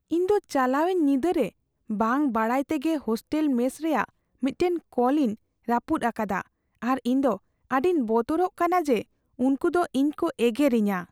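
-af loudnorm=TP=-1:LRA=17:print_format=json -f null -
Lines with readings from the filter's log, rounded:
"input_i" : "-25.4",
"input_tp" : "-9.9",
"input_lra" : "1.7",
"input_thresh" : "-35.5",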